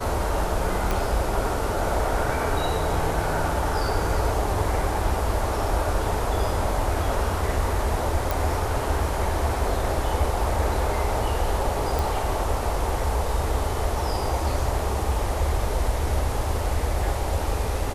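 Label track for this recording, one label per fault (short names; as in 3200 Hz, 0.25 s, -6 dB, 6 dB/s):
0.910000	0.910000	pop
8.310000	8.310000	pop
11.990000	11.990000	pop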